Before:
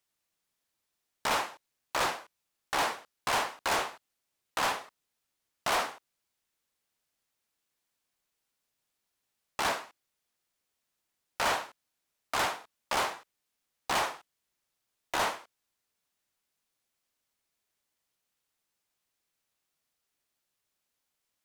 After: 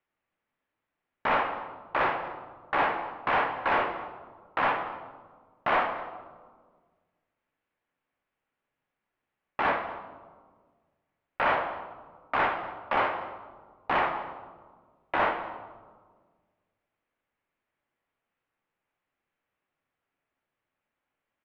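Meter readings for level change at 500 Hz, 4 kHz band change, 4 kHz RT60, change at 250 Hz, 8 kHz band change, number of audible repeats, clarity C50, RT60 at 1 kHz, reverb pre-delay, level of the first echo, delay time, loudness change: +5.5 dB, -6.5 dB, 0.90 s, +5.5 dB, under -30 dB, 1, 8.5 dB, 1.4 s, 3 ms, -19.0 dB, 239 ms, +3.0 dB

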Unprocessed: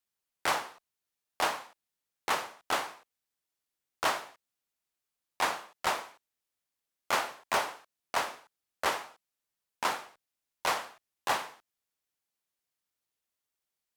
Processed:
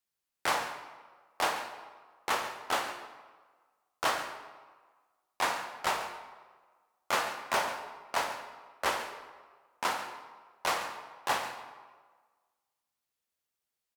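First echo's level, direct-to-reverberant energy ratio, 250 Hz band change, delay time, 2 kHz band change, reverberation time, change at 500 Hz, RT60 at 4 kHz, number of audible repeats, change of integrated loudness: -14.0 dB, 5.5 dB, 0.0 dB, 139 ms, 0.0 dB, 1.5 s, 0.0 dB, 1.0 s, 1, -0.5 dB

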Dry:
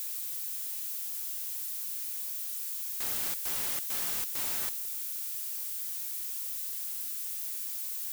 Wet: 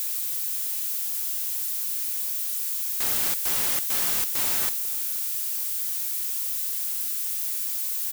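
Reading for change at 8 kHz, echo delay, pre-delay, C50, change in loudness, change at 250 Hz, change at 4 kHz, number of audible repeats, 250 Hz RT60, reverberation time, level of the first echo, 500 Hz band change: +8.0 dB, 497 ms, no reverb, no reverb, +8.0 dB, +8.0 dB, +8.0 dB, 1, no reverb, no reverb, -19.0 dB, +8.0 dB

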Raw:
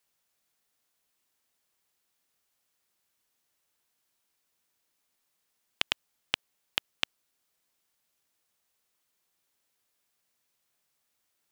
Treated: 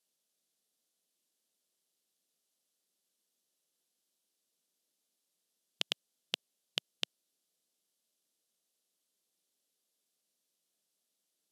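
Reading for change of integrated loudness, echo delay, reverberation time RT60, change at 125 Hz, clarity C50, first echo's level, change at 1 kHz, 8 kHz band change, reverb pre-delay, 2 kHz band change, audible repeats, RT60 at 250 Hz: -5.0 dB, no echo, no reverb, -9.0 dB, no reverb, no echo, -11.5 dB, -2.5 dB, no reverb, -9.5 dB, no echo, no reverb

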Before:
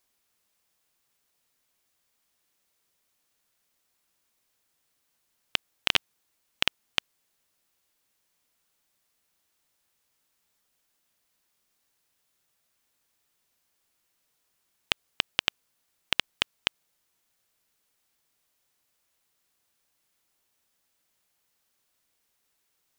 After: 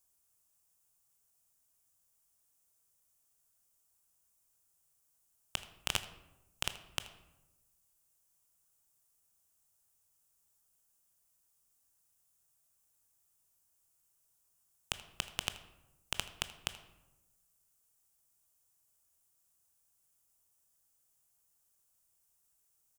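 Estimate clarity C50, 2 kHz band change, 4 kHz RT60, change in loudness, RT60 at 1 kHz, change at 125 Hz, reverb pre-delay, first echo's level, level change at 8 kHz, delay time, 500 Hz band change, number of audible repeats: 12.5 dB, -11.5 dB, 0.60 s, -10.0 dB, 0.90 s, -1.0 dB, 17 ms, -19.0 dB, +0.5 dB, 80 ms, -8.0 dB, 1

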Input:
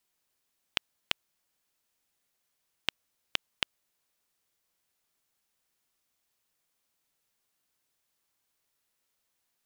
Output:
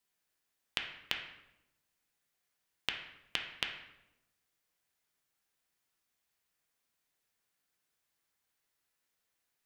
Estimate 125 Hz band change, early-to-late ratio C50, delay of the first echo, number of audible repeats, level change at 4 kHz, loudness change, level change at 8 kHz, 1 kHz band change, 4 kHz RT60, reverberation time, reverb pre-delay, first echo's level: -3.0 dB, 5.5 dB, no echo, no echo, -3.0 dB, -3.0 dB, -4.5 dB, -2.5 dB, 0.65 s, 0.90 s, 3 ms, no echo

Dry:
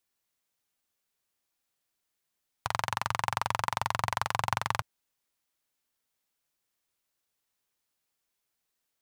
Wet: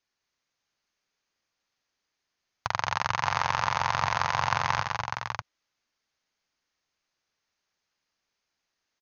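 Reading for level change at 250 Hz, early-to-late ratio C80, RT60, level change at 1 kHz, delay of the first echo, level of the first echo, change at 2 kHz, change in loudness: +3.5 dB, no reverb, no reverb, +4.5 dB, 75 ms, -19.0 dB, +5.5 dB, +4.0 dB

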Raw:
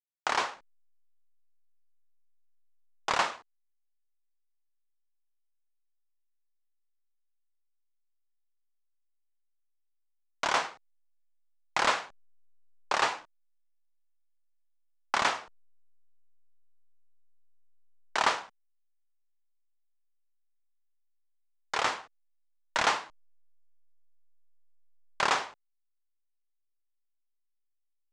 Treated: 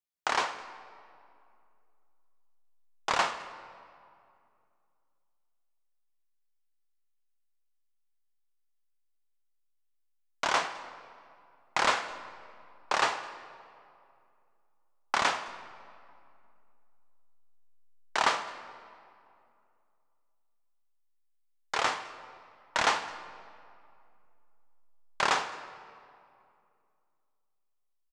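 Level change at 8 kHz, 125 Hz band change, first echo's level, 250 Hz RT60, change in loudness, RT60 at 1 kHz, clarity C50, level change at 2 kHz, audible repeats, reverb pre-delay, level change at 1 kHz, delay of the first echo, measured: 0.0 dB, +0.5 dB, -24.5 dB, 2.8 s, -0.5 dB, 2.4 s, 12.0 dB, +0.5 dB, 1, 7 ms, +0.5 dB, 210 ms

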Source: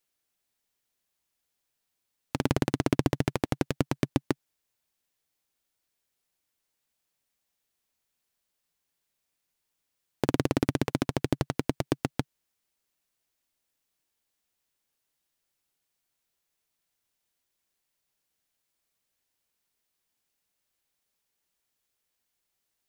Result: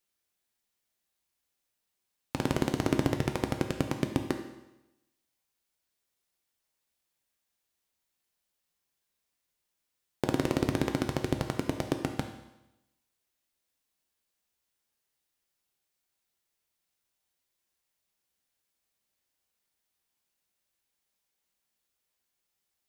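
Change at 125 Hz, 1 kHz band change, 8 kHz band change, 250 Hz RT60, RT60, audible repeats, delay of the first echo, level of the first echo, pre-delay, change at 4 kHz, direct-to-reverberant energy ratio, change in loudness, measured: -2.5 dB, -1.0 dB, -1.5 dB, 0.95 s, 0.95 s, no echo, no echo, no echo, 6 ms, -1.0 dB, 4.5 dB, -1.5 dB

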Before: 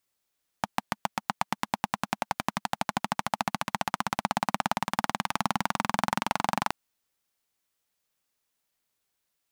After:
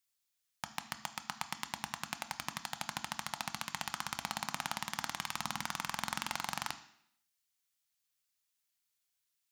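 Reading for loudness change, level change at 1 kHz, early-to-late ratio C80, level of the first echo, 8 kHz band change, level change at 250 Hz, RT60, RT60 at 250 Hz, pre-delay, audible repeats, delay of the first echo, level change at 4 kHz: -8.5 dB, -12.0 dB, 16.5 dB, no echo, -2.5 dB, -14.5 dB, 0.70 s, 0.75 s, 3 ms, no echo, no echo, -3.5 dB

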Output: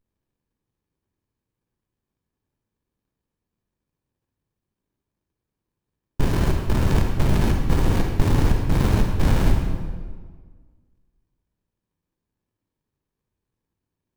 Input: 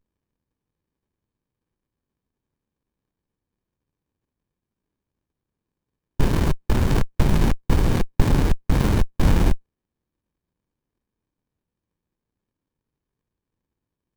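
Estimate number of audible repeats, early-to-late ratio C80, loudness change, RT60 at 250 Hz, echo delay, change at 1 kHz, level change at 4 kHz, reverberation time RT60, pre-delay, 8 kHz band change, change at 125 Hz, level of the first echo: no echo, 5.0 dB, 0.0 dB, 1.8 s, no echo, 0.0 dB, 0.0 dB, 1.6 s, 36 ms, -0.5 dB, +0.5 dB, no echo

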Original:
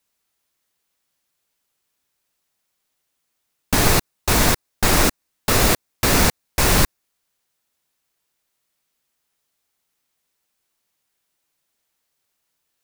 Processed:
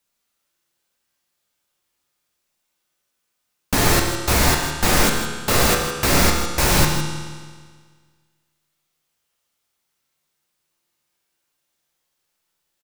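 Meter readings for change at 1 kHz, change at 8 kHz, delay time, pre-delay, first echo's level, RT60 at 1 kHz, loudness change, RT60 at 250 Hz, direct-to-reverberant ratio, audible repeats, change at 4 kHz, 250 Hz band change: +1.0 dB, 0.0 dB, 157 ms, 6 ms, -10.5 dB, 1.7 s, 0.0 dB, 1.7 s, 1.0 dB, 1, +1.0 dB, +0.5 dB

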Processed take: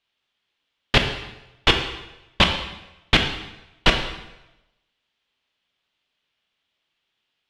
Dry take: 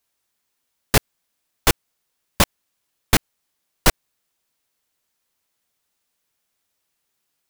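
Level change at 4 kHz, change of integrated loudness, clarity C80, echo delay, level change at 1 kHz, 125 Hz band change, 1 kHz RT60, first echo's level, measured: +6.0 dB, +0.5 dB, 9.0 dB, no echo, +0.5 dB, -0.5 dB, 0.95 s, no echo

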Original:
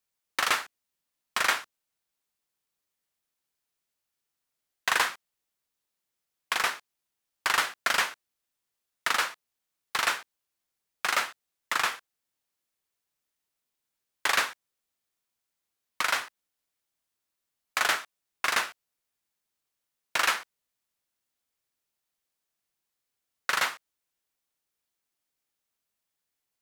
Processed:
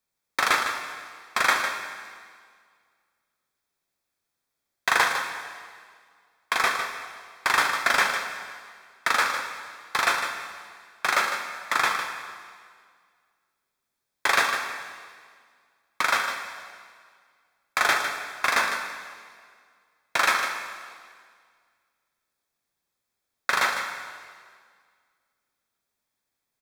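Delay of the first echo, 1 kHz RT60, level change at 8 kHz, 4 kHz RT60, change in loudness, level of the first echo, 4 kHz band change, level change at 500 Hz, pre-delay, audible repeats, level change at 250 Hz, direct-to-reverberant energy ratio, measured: 154 ms, 1.9 s, +1.5 dB, 1.8 s, +3.0 dB, -9.0 dB, +2.0 dB, +6.5 dB, 4 ms, 1, +6.5 dB, 3.0 dB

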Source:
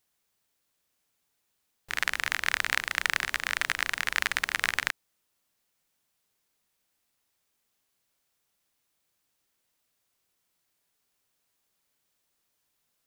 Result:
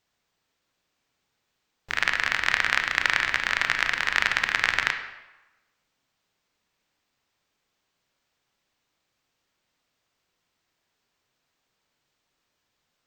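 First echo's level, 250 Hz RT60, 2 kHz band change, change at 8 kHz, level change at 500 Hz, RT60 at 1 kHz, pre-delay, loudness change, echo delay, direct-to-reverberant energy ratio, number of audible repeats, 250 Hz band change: no echo, 0.95 s, +5.0 dB, -2.0 dB, +5.5 dB, 1.1 s, 22 ms, +4.5 dB, no echo, 6.0 dB, no echo, +5.5 dB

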